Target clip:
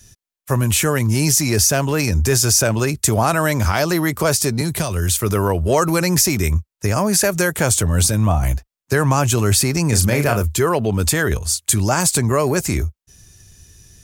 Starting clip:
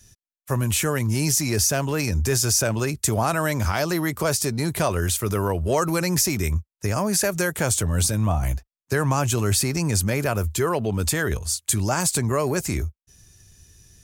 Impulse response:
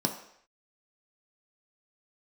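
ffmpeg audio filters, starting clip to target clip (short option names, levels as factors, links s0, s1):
-filter_complex "[0:a]asettb=1/sr,asplit=3[s0][s1][s2];[s0]atrim=end=4.614[s3];[s1]atrim=start=4.61:end=5.22,asetpts=PTS-STARTPTS,afade=t=in:d=0.004:c=qsin,afade=t=out:st=0.606:d=0.004:c=qsin,acrossover=split=190|3000[s4][s5][s6];[s5]acompressor=threshold=0.0251:ratio=3[s7];[s4][s7][s6]amix=inputs=3:normalize=0[s8];[s2]atrim=start=5.216[s9];[s3][s8]acrossfade=d=0.004:c1=hsin:c2=qsin[s10];[s10][s9]acrossfade=d=0.004:c1=qsin:c2=hsin,asettb=1/sr,asplit=3[s11][s12][s13];[s11]atrim=end=9.894[s14];[s12]atrim=start=9.89:end=10.42,asetpts=PTS-STARTPTS,afade=t=in:d=0.004:c=qsin,afade=t=out:st=0.526:d=0.004:c=qsin,asplit=2[s15][s16];[s16]adelay=34,volume=0.473[s17];[s15][s17]amix=inputs=2:normalize=0,atrim=end_sample=23373[s18];[s13]atrim=start=10.416[s19];[s14][s18]acrossfade=d=0.004:c1=hsin:c2=qsin[s20];[s20][s19]acrossfade=d=0.004:c1=qsin:c2=hsin,volume=1.88"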